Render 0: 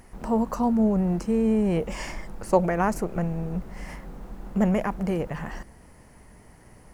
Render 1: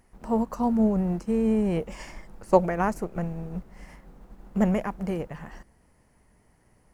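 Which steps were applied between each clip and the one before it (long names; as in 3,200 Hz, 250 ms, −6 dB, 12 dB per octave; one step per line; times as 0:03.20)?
expander for the loud parts 1.5 to 1, over −41 dBFS
level +2 dB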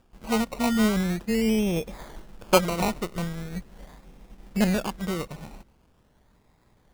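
sample-and-hold swept by an LFO 21×, swing 60% 0.42 Hz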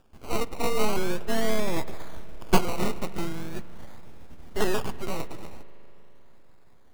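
full-wave rectification
spring reverb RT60 3.9 s, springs 39 ms, chirp 20 ms, DRR 16.5 dB
level +1.5 dB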